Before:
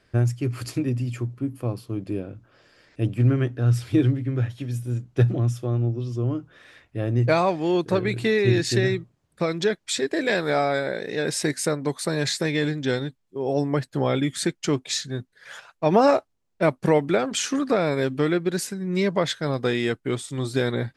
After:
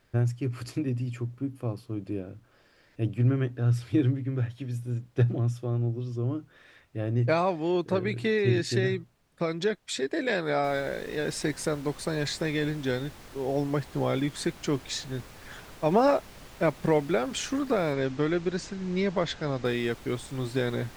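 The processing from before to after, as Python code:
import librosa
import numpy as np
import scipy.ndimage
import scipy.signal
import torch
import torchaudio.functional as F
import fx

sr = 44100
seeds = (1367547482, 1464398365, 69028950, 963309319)

y = fx.noise_floor_step(x, sr, seeds[0], at_s=10.64, before_db=-65, after_db=-42, tilt_db=3.0)
y = fx.steep_lowpass(y, sr, hz=7200.0, slope=36, at=(17.93, 19.65))
y = fx.high_shelf(y, sr, hz=6000.0, db=-6.0)
y = y * librosa.db_to_amplitude(-4.5)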